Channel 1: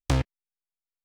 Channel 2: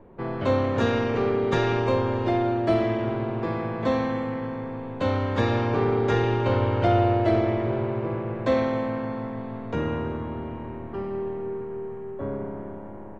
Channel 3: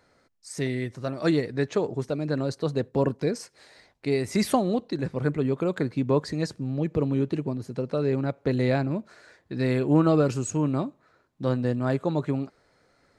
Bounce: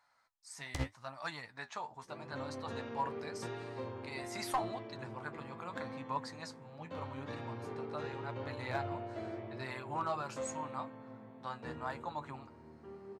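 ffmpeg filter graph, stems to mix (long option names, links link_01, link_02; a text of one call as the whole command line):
ffmpeg -i stem1.wav -i stem2.wav -i stem3.wav -filter_complex "[0:a]alimiter=limit=-22.5dB:level=0:latency=1:release=112,tremolo=f=12:d=0.87,adelay=650,volume=2.5dB[link_01];[1:a]highpass=88,adelay=1900,volume=-16dB[link_02];[2:a]lowshelf=frequency=600:width_type=q:width=3:gain=-14,aeval=exprs='clip(val(0),-1,0.133)':channel_layout=same,volume=-6dB[link_03];[link_01][link_02][link_03]amix=inputs=3:normalize=0,flanger=delay=6.8:depth=6.6:regen=51:speed=0.82:shape=sinusoidal" out.wav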